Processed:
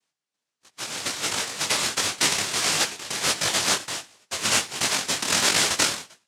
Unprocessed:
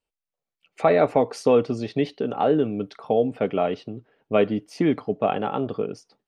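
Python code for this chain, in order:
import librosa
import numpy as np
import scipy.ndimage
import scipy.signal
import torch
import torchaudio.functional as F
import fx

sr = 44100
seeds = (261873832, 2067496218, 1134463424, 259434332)

y = fx.highpass(x, sr, hz=220.0, slope=6)
y = fx.high_shelf(y, sr, hz=5600.0, db=10.5)
y = fx.hum_notches(y, sr, base_hz=50, count=8)
y = fx.over_compress(y, sr, threshold_db=-25.0, ratio=-0.5)
y = fx.noise_vocoder(y, sr, seeds[0], bands=1)
y = fx.detune_double(y, sr, cents=50)
y = F.gain(torch.from_numpy(y), 6.5).numpy()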